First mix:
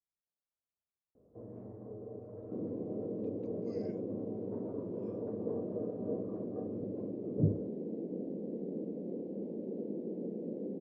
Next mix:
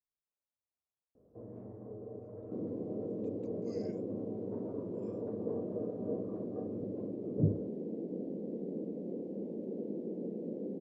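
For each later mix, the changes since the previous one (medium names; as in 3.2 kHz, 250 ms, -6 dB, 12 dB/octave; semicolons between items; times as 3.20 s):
master: remove boxcar filter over 5 samples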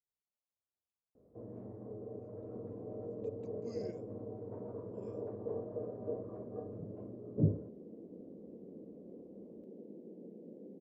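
second sound -11.5 dB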